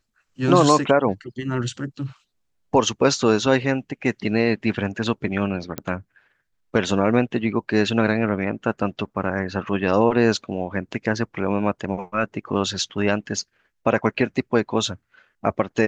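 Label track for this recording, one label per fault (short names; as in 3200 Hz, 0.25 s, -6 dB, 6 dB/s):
5.780000	5.780000	pop -13 dBFS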